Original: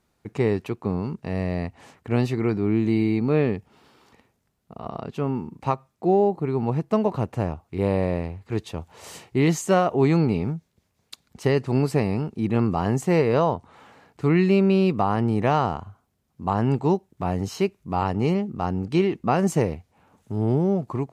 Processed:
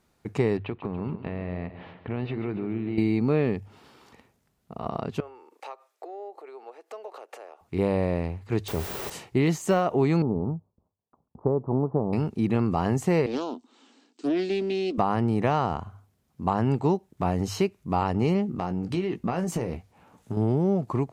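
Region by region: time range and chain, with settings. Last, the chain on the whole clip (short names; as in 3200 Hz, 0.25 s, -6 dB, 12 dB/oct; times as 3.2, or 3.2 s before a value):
0.57–2.98 steep low-pass 3600 Hz + compressor, threshold -28 dBFS + feedback echo 0.142 s, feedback 56%, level -12.5 dB
5.2–7.61 notch 990 Hz, Q 9.6 + compressor, threshold -35 dBFS + steep high-pass 420 Hz
8.68–9.1 requantised 6-bit, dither triangular + bell 400 Hz +8 dB 0.25 oct + fast leveller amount 70%
10.22–12.13 steep low-pass 1100 Hz 48 dB/oct + gate with hold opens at -54 dBFS, closes at -58 dBFS + low shelf 390 Hz -4.5 dB
13.26–14.98 Chebyshev band-pass 240–8200 Hz, order 5 + band shelf 1000 Hz -15 dB 2.7 oct + Doppler distortion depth 0.29 ms
18.47–20.37 compressor 10:1, threshold -25 dBFS + doubler 17 ms -8.5 dB
whole clip: de-esser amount 70%; notches 50/100 Hz; compressor 3:1, threshold -22 dBFS; gain +2 dB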